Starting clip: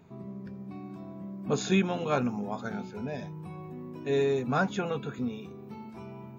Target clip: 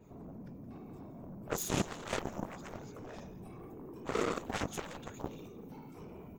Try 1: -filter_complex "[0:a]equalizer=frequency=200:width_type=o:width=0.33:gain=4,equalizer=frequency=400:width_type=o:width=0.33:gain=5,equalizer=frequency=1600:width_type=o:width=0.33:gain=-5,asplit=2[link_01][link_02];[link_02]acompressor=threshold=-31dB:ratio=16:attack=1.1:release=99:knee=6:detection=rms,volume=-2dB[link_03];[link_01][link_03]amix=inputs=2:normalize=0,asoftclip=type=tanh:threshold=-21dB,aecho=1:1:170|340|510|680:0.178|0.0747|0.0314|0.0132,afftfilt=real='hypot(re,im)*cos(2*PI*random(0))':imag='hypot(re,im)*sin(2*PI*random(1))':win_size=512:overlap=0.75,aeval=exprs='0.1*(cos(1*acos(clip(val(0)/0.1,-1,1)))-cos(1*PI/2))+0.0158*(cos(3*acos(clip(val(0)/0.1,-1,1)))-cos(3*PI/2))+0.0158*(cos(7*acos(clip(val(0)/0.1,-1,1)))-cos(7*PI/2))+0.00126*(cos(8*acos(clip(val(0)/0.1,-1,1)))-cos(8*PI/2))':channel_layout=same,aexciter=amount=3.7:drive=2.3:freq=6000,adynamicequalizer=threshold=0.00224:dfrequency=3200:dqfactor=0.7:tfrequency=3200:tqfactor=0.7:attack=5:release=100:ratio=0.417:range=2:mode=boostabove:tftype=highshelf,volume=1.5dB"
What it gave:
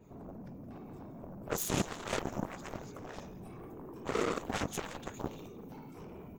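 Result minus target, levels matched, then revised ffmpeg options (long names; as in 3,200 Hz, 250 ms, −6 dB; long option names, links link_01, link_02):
downward compressor: peak gain reduction −9.5 dB
-filter_complex "[0:a]equalizer=frequency=200:width_type=o:width=0.33:gain=4,equalizer=frequency=400:width_type=o:width=0.33:gain=5,equalizer=frequency=1600:width_type=o:width=0.33:gain=-5,asplit=2[link_01][link_02];[link_02]acompressor=threshold=-41dB:ratio=16:attack=1.1:release=99:knee=6:detection=rms,volume=-2dB[link_03];[link_01][link_03]amix=inputs=2:normalize=0,asoftclip=type=tanh:threshold=-21dB,aecho=1:1:170|340|510|680:0.178|0.0747|0.0314|0.0132,afftfilt=real='hypot(re,im)*cos(2*PI*random(0))':imag='hypot(re,im)*sin(2*PI*random(1))':win_size=512:overlap=0.75,aeval=exprs='0.1*(cos(1*acos(clip(val(0)/0.1,-1,1)))-cos(1*PI/2))+0.0158*(cos(3*acos(clip(val(0)/0.1,-1,1)))-cos(3*PI/2))+0.0158*(cos(7*acos(clip(val(0)/0.1,-1,1)))-cos(7*PI/2))+0.00126*(cos(8*acos(clip(val(0)/0.1,-1,1)))-cos(8*PI/2))':channel_layout=same,aexciter=amount=3.7:drive=2.3:freq=6000,adynamicequalizer=threshold=0.00224:dfrequency=3200:dqfactor=0.7:tfrequency=3200:tqfactor=0.7:attack=5:release=100:ratio=0.417:range=2:mode=boostabove:tftype=highshelf,volume=1.5dB"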